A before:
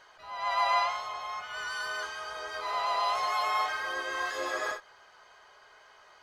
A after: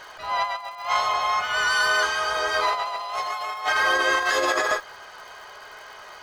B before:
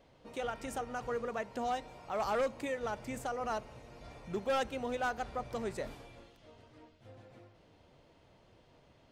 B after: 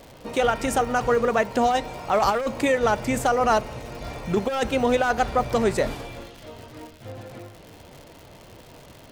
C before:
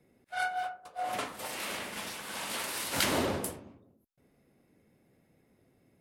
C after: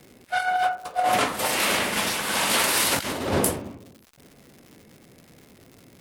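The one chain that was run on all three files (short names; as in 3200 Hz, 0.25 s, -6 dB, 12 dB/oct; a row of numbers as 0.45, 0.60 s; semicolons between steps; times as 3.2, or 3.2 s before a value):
negative-ratio compressor -34 dBFS, ratio -0.5; crackle 200/s -51 dBFS; match loudness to -23 LUFS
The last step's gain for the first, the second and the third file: +11.0, +15.5, +12.5 dB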